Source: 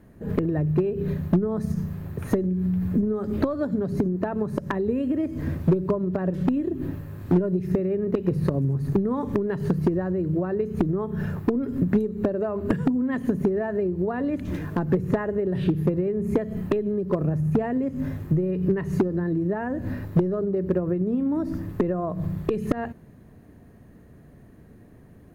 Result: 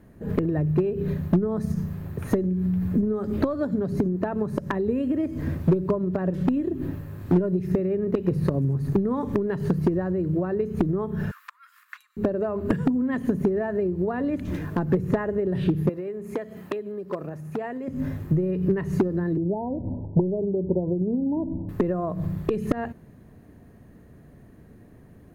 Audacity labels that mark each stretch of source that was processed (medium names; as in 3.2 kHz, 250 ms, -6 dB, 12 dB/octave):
11.310000	12.170000	steep high-pass 1.1 kHz 72 dB/octave
15.890000	17.880000	high-pass 710 Hz 6 dB/octave
19.370000	21.690000	Chebyshev low-pass 980 Hz, order 10